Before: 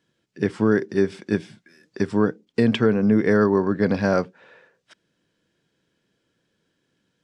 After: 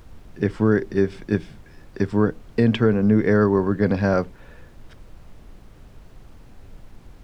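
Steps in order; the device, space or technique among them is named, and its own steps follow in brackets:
car interior (parametric band 100 Hz +6.5 dB 0.64 octaves; high-shelf EQ 4,700 Hz −7 dB; brown noise bed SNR 19 dB)

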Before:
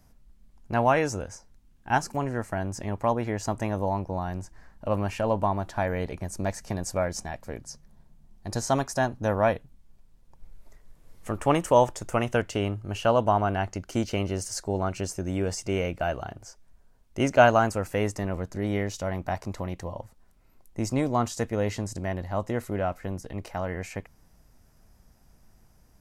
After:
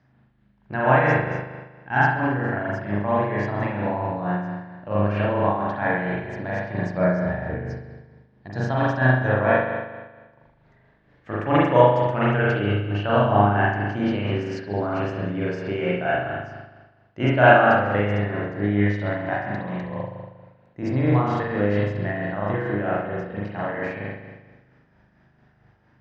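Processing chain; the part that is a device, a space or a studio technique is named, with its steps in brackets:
0:06.97–0:07.70: spectral tilt −2.5 dB per octave
combo amplifier with spring reverb and tremolo (spring reverb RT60 1.3 s, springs 39 ms, chirp 30 ms, DRR −6.5 dB; amplitude tremolo 4.4 Hz, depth 43%; loudspeaker in its box 110–4,100 Hz, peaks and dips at 130 Hz +9 dB, 310 Hz +3 dB, 1,700 Hz +10 dB)
level −2 dB

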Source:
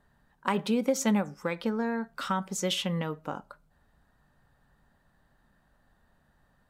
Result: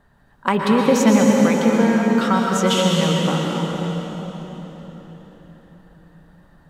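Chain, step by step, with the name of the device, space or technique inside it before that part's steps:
swimming-pool hall (convolution reverb RT60 4.4 s, pre-delay 112 ms, DRR −1.5 dB; high-shelf EQ 4,700 Hz −5 dB)
level +9 dB

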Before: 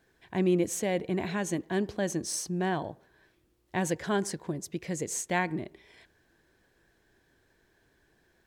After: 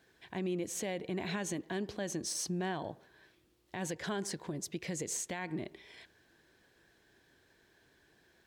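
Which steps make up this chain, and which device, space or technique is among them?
broadcast voice chain (high-pass filter 83 Hz 6 dB per octave; de-essing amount 65%; downward compressor 3 to 1, threshold −33 dBFS, peak gain reduction 9 dB; parametric band 3,700 Hz +4.5 dB 1.5 octaves; brickwall limiter −27 dBFS, peak gain reduction 9 dB)

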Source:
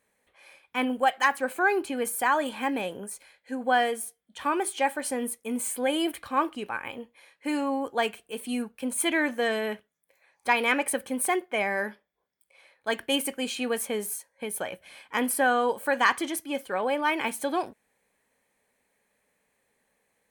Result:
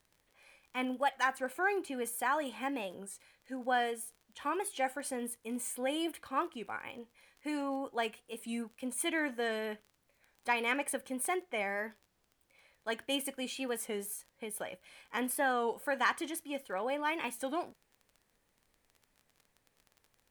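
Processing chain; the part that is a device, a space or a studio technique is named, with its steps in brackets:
warped LP (wow of a warped record 33 1/3 rpm, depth 100 cents; surface crackle 23 per second −38 dBFS; pink noise bed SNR 40 dB)
level −8 dB

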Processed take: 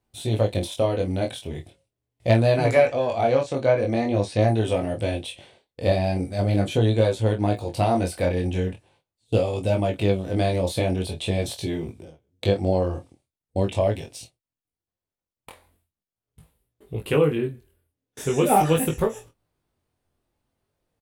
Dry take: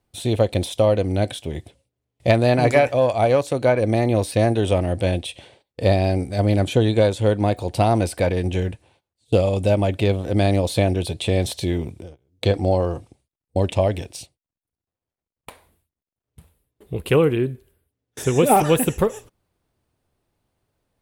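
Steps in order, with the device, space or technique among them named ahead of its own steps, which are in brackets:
double-tracked vocal (double-tracking delay 26 ms −9 dB; chorus effect 0.42 Hz, delay 18 ms, depth 4.5 ms)
0:02.86–0:04.48: low-pass filter 7,700 Hz 24 dB per octave
level −1 dB

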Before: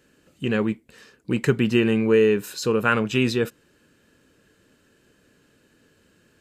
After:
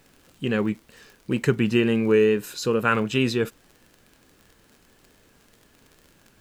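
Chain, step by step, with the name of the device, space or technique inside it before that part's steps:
vinyl LP (tape wow and flutter; surface crackle 42 per second −37 dBFS; pink noise bed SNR 35 dB)
level −1 dB

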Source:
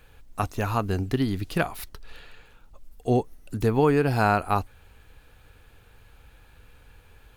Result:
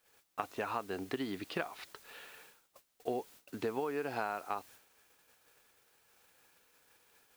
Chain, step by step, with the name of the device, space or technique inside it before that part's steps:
baby monitor (band-pass filter 360–3,800 Hz; downward compressor 12 to 1, threshold −30 dBFS, peak gain reduction 14 dB; white noise bed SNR 18 dB; noise gate −54 dBFS, range −18 dB)
level −2 dB

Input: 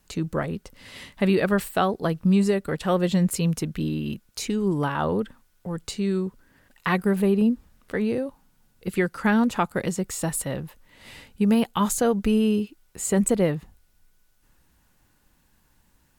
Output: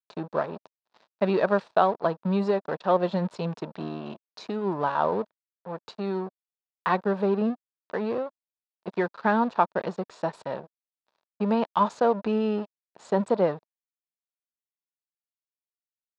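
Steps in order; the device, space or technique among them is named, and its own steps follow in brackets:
blown loudspeaker (dead-zone distortion −36.5 dBFS; loudspeaker in its box 240–4,100 Hz, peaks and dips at 280 Hz −6 dB, 630 Hz +6 dB, 950 Hz +7 dB, 2,100 Hz −9 dB, 3,000 Hz −8 dB)

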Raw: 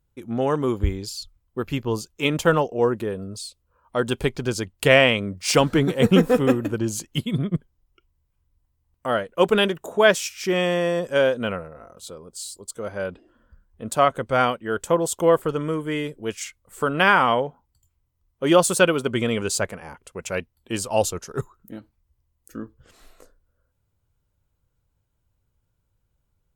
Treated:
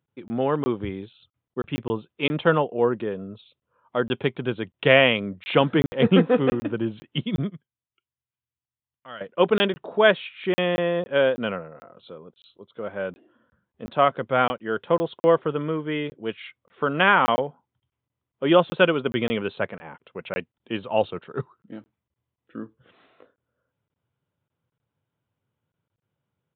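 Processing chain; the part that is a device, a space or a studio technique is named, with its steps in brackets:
0:07.51–0:09.21: guitar amp tone stack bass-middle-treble 5-5-5
call with lost packets (high-pass filter 120 Hz 24 dB per octave; downsampling to 8,000 Hz; dropped packets of 20 ms random)
level −1 dB

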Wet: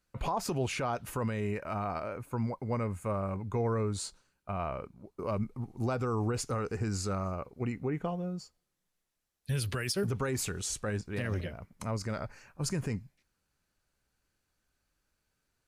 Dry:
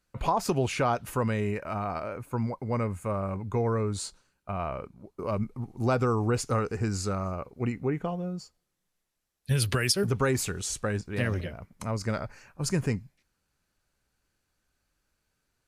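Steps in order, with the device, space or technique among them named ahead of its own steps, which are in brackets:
clipper into limiter (hard clipping −14 dBFS, distortion −42 dB; brickwall limiter −20.5 dBFS, peak gain reduction 6.5 dB)
level −2.5 dB

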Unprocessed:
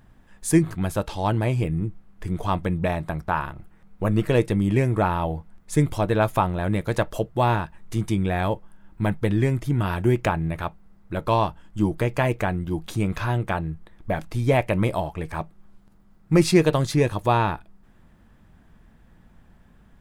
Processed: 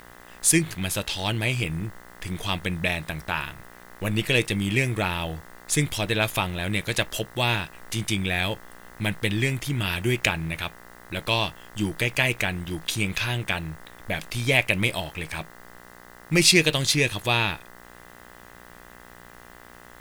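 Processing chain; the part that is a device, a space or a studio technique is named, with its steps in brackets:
high shelf with overshoot 1,700 Hz +14 dB, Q 1.5
video cassette with head-switching buzz (hum with harmonics 60 Hz, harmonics 34, −44 dBFS 0 dB per octave; white noise bed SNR 30 dB)
level −4.5 dB

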